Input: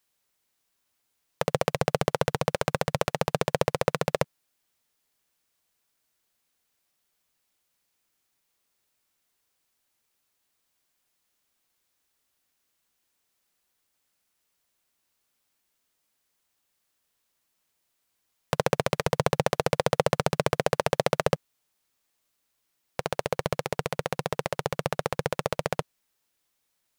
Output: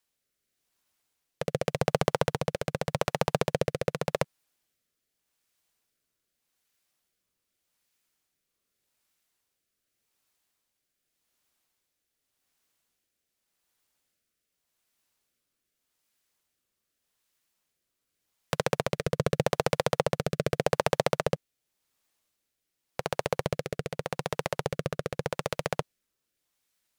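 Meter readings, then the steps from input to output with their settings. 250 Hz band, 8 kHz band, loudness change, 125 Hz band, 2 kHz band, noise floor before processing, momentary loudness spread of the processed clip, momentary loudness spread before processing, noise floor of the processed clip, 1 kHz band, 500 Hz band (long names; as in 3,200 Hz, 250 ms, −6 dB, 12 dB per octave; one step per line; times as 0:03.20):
−1.5 dB, −2.5 dB, −2.0 dB, −1.5 dB, −3.0 dB, −77 dBFS, 8 LU, 6 LU, −83 dBFS, −3.5 dB, −2.0 dB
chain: rotating-speaker cabinet horn 0.85 Hz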